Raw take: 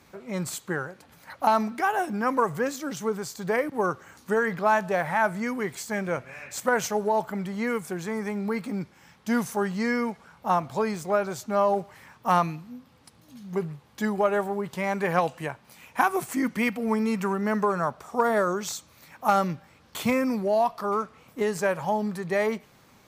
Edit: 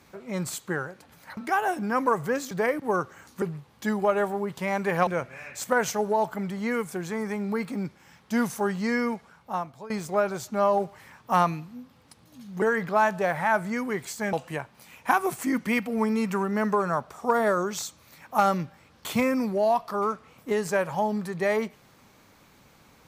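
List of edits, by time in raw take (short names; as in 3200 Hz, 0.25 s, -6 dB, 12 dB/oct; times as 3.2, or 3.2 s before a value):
1.37–1.68 cut
2.82–3.41 cut
4.32–6.03 swap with 13.58–15.23
10.05–10.86 fade out, to -19 dB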